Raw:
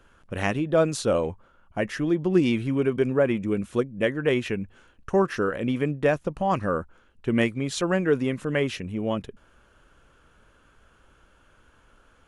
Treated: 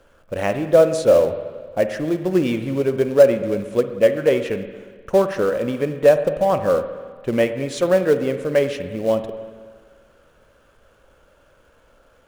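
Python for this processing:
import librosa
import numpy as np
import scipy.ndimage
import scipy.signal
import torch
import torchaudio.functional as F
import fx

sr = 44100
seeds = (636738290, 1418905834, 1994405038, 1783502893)

p1 = fx.peak_eq(x, sr, hz=560.0, db=12.5, octaves=0.62)
p2 = fx.quant_companded(p1, sr, bits=4)
p3 = p1 + F.gain(torch.from_numpy(p2), -9.5).numpy()
p4 = fx.rev_spring(p3, sr, rt60_s=1.6, pass_ms=(45, 58), chirp_ms=75, drr_db=9.0)
y = F.gain(torch.from_numpy(p4), -3.0).numpy()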